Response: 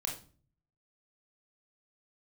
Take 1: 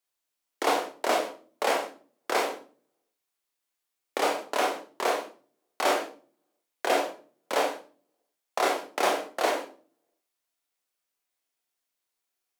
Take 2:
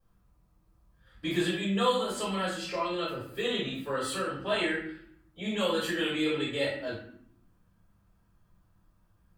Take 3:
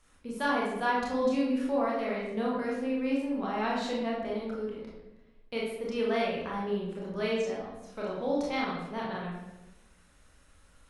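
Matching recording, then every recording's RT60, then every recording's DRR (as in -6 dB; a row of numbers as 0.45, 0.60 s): 1; 0.40, 0.65, 1.0 s; -0.5, -12.0, -5.0 dB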